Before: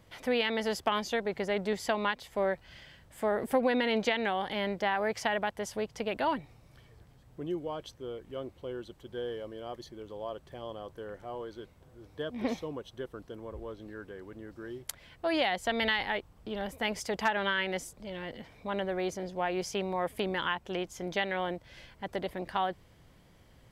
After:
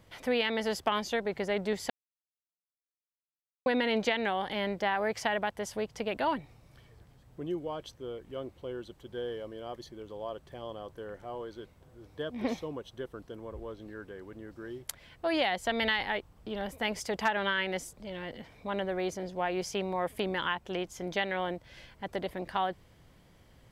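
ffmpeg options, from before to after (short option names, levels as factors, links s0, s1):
-filter_complex "[0:a]asplit=3[s0][s1][s2];[s0]atrim=end=1.9,asetpts=PTS-STARTPTS,afade=t=out:st=1.896:d=0.004:c=hsin[s3];[s1]atrim=start=1.9:end=3.66,asetpts=PTS-STARTPTS,volume=0[s4];[s2]atrim=start=3.66,asetpts=PTS-STARTPTS,afade=t=in:d=0.004:c=hsin[s5];[s3][s4][s5]concat=n=3:v=0:a=1"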